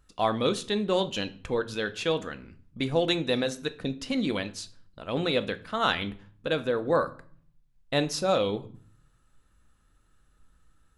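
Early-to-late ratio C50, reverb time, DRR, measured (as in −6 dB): 17.5 dB, 0.50 s, 10.0 dB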